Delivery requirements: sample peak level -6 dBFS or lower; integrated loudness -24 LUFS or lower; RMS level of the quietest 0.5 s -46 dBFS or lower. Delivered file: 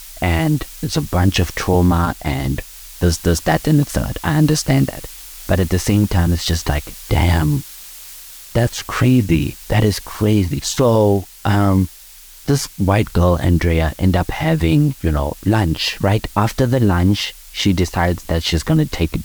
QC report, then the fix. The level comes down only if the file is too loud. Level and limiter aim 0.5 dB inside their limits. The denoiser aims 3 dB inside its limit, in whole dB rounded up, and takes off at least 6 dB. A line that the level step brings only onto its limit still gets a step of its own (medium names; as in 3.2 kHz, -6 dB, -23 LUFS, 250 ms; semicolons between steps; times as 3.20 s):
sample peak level -3.5 dBFS: fail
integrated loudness -17.5 LUFS: fail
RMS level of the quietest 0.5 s -41 dBFS: fail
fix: trim -7 dB